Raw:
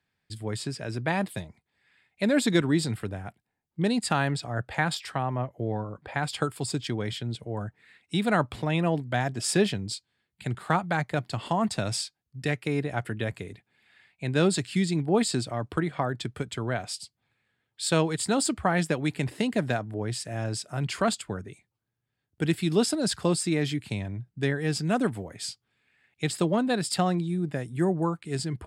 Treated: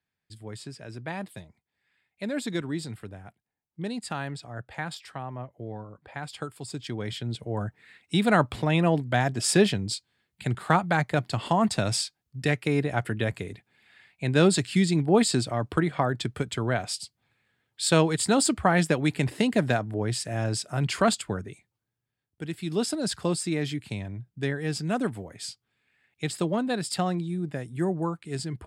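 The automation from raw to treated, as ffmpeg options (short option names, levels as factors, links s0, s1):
-af "volume=3.35,afade=t=in:st=6.67:d=0.95:silence=0.298538,afade=t=out:st=21.33:d=1.15:silence=0.237137,afade=t=in:st=22.48:d=0.45:silence=0.421697"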